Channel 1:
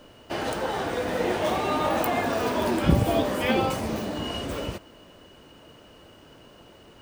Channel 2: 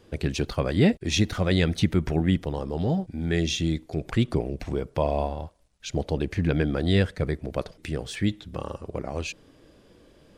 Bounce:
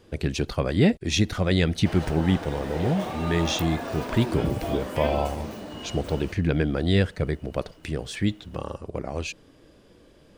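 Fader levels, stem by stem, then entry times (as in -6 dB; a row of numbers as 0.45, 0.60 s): -7.0, +0.5 dB; 1.55, 0.00 s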